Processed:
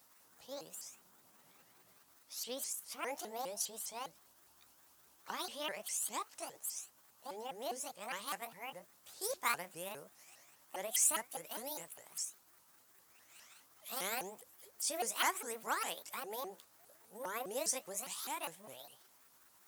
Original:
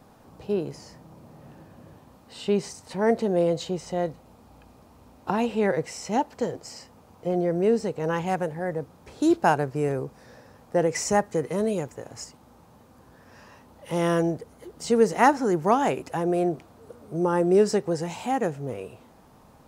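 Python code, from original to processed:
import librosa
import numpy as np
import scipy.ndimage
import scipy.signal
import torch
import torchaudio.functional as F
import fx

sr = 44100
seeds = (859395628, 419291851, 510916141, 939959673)

y = fx.pitch_ramps(x, sr, semitones=8.5, every_ms=203)
y = scipy.signal.lfilter([1.0, -0.97], [1.0], y)
y = F.gain(torch.from_numpy(y), 1.5).numpy()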